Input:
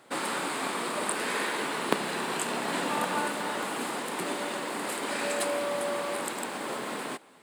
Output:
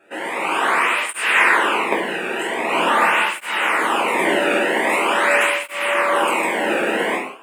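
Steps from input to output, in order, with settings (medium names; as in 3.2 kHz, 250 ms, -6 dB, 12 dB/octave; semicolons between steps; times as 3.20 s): resonant high shelf 3.3 kHz -8 dB, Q 3; level rider gain up to 10.5 dB; gated-style reverb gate 220 ms falling, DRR -5 dB; cancelling through-zero flanger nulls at 0.44 Hz, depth 1 ms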